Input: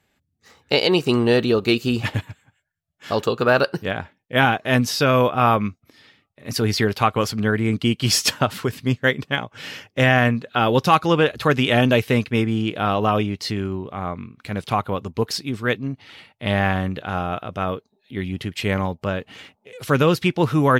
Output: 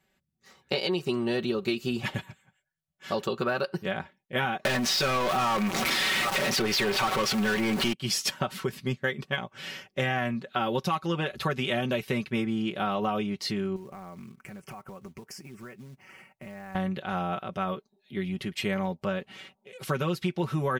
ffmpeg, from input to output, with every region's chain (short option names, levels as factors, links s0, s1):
-filter_complex "[0:a]asettb=1/sr,asplit=3[s0][s1][s2];[s0]atrim=end=4.654[s3];[s1]atrim=start=4.65:end=7.93,asetpts=PTS-STARTPTS,afade=t=in:d=0.004:c=qsin,afade=t=out:st=3.276:d=0.004:c=qsin,aeval=exprs='val(0)+0.5*0.1*sgn(val(0))':c=same,acrossover=split=5400[s4][s5];[s5]acompressor=threshold=0.0158:ratio=4:attack=1:release=60[s6];[s4][s6]amix=inputs=2:normalize=0,asplit=2[s7][s8];[s8]highpass=f=720:p=1,volume=20,asoftclip=type=tanh:threshold=0.631[s9];[s7][s9]amix=inputs=2:normalize=0,lowpass=f=6500:p=1,volume=0.501[s10];[s2]atrim=start=7.926[s11];[s3][s10]acrossfade=d=0.004:c1=hsin:c2=qsin[s12];[s12][s11]acrossfade=d=0.004:c1=qsin:c2=hsin,asettb=1/sr,asplit=3[s13][s14][s15];[s13]atrim=end=13.764[s16];[s14]atrim=start=13.76:end=16.75,asetpts=PTS-STARTPTS,afade=t=in:d=0.004:c=qsin,afade=t=out:st=2.986:d=0.004:c=qsin,asuperstop=centerf=3800:order=4:qfactor=1.3,acompressor=threshold=0.0224:ratio=20:attack=3.2:release=140:knee=1:detection=peak,acrusher=bits=5:mode=log:mix=0:aa=0.000001[s17];[s15]atrim=start=16.746[s18];[s16][s17]acrossfade=d=0.004:c1=hsin:c2=qsin[s19];[s19][s18]acrossfade=d=0.004:c1=qsin:c2=hsin,aecho=1:1:5.3:0.73,acompressor=threshold=0.126:ratio=6,volume=0.473"